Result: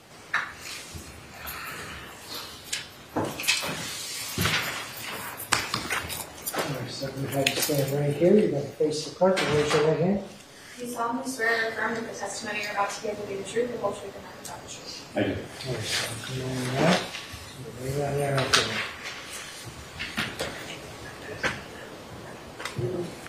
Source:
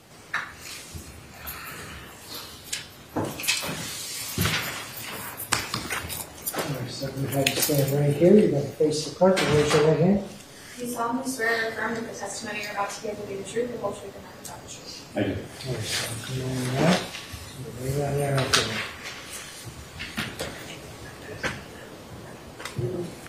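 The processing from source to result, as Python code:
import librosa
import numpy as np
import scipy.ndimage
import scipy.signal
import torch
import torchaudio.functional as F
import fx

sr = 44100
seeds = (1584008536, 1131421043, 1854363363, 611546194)

p1 = fx.high_shelf(x, sr, hz=7400.0, db=-6.0)
p2 = fx.rider(p1, sr, range_db=4, speed_s=2.0)
p3 = p1 + (p2 * librosa.db_to_amplitude(-2.0))
p4 = fx.low_shelf(p3, sr, hz=340.0, db=-5.0)
y = p4 * librosa.db_to_amplitude(-4.5)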